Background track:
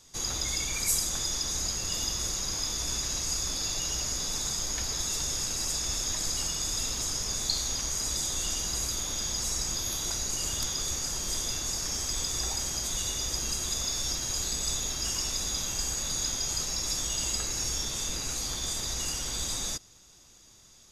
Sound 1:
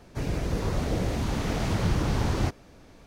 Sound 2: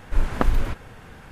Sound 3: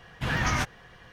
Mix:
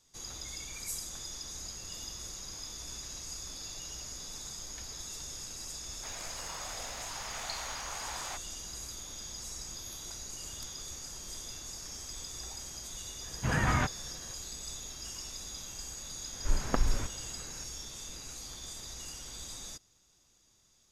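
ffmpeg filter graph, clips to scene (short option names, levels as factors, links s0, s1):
-filter_complex "[0:a]volume=0.266[s0];[1:a]highpass=f=730:w=0.5412,highpass=f=730:w=1.3066[s1];[3:a]adynamicsmooth=sensitivity=0.5:basefreq=2000[s2];[s1]atrim=end=3.06,asetpts=PTS-STARTPTS,volume=0.531,afade=t=in:d=0.004:c=hsin,afade=t=out:st=3.056:d=0.004:c=hsin,adelay=5870[s3];[s2]atrim=end=1.12,asetpts=PTS-STARTPTS,volume=0.944,afade=t=in:d=0.004:c=hsin,afade=t=out:st=1.116:d=0.004:c=hsin,adelay=13220[s4];[2:a]atrim=end=1.31,asetpts=PTS-STARTPTS,volume=0.398,afade=t=in:d=0.004:c=hsin,afade=t=out:st=1.306:d=0.004:c=hsin,adelay=16330[s5];[s0][s3][s4][s5]amix=inputs=4:normalize=0"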